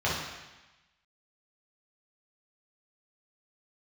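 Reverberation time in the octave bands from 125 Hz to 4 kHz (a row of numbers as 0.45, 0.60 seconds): 1.1, 1.1, 1.0, 1.1, 1.2, 1.2 seconds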